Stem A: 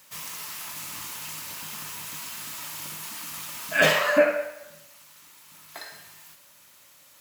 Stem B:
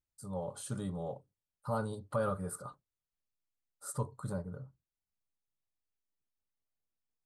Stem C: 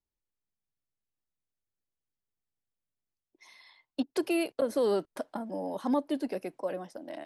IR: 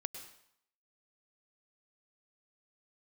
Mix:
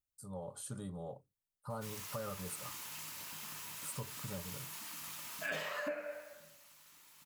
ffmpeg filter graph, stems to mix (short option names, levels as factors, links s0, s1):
-filter_complex "[0:a]adelay=1700,volume=0.335[s0];[1:a]highshelf=f=9800:g=9.5,volume=0.562[s1];[s0][s1]amix=inputs=2:normalize=0,acompressor=threshold=0.0126:ratio=4"